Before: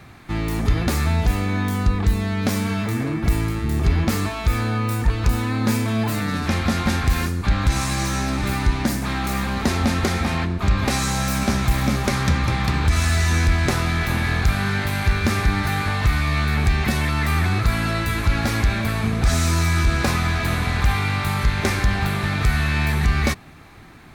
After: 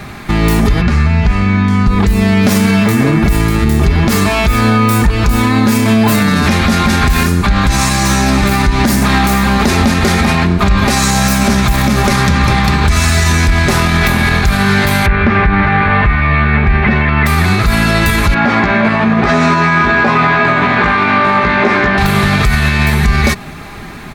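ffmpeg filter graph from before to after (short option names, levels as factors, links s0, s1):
-filter_complex "[0:a]asettb=1/sr,asplit=3[s0][s1][s2];[s0]atrim=end=0.814[s3];[s1]atrim=start=0.81:end=1.87,asetpts=PTS-STARTPTS,afade=t=in:d=0.004:c=qsin,afade=t=out:st=1.056:d=0.004:c=qsin,lowpass=4900,equalizer=f=3500:w=5.7:g=-5,acrossover=split=210|1000|3300[s4][s5][s6][s7];[s4]acompressor=threshold=0.0891:ratio=3[s8];[s5]acompressor=threshold=0.00631:ratio=3[s9];[s6]acompressor=threshold=0.0126:ratio=3[s10];[s7]acompressor=threshold=0.002:ratio=3[s11];[s8][s9][s10][s11]amix=inputs=4:normalize=0[s12];[s2]atrim=start=1.866[s13];[s3][s12]acrossfade=d=0.004:c1=hsin:c2=qsin[s14];[s14][s13]acrossfade=d=0.004:c1=qsin:c2=hsin,asettb=1/sr,asplit=3[s15][s16][s17];[s15]atrim=end=15.064[s18];[s16]atrim=start=15.06:end=17.26,asetpts=PTS-STARTPTS,afade=t=in:d=0.004:c=qsin,afade=t=out:st=2.196:d=0.004:c=qsin,lowpass=f=2300:w=0.5412,lowpass=f=2300:w=1.3066,aemphasis=mode=production:type=75kf[s19];[s17]atrim=start=17.256[s20];[s18][s19]acrossfade=d=0.004:c1=hsin:c2=qsin[s21];[s21][s20]acrossfade=d=0.004:c1=qsin:c2=hsin,asettb=1/sr,asplit=3[s22][s23][s24];[s22]atrim=end=18.344[s25];[s23]atrim=start=18.34:end=21.98,asetpts=PTS-STARTPTS,afade=t=in:d=0.004:c=qsin,afade=t=out:st=3.636:d=0.004:c=qsin,highpass=220,lowpass=2100,asplit=2[s26][s27];[s27]adelay=17,volume=0.708[s28];[s26][s28]amix=inputs=2:normalize=0,atrim=end_sample=160524[s29];[s24]atrim=start=21.976[s30];[s25][s29]acrossfade=d=0.004:c1=hsin:c2=qsin[s31];[s31][s30]acrossfade=d=0.004:c1=qsin:c2=hsin,acompressor=threshold=0.112:ratio=6,aecho=1:1:4.9:0.38,alimiter=level_in=7.08:limit=0.891:release=50:level=0:latency=1,volume=0.891"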